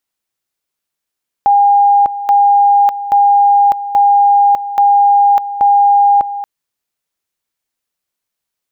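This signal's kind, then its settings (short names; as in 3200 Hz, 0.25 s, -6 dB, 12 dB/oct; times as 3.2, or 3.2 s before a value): two-level tone 810 Hz -5.5 dBFS, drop 13 dB, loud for 0.60 s, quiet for 0.23 s, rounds 6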